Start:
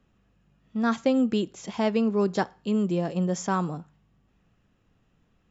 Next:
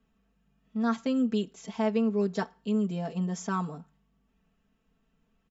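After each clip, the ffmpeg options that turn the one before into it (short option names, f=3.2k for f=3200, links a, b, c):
-af "aecho=1:1:4.5:0.96,volume=-8dB"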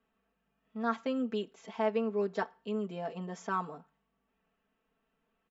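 -af "bass=f=250:g=-15,treble=f=4k:g=-13"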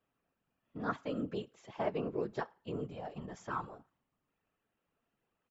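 -af "afftfilt=real='hypot(re,im)*cos(2*PI*random(0))':imag='hypot(re,im)*sin(2*PI*random(1))':win_size=512:overlap=0.75,volume=1dB"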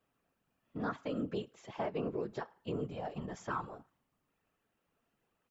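-af "alimiter=level_in=5.5dB:limit=-24dB:level=0:latency=1:release=197,volume=-5.5dB,volume=3dB"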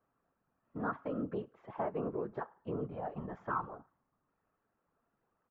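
-af "lowpass=f=1.3k:t=q:w=1.5,volume=-1dB"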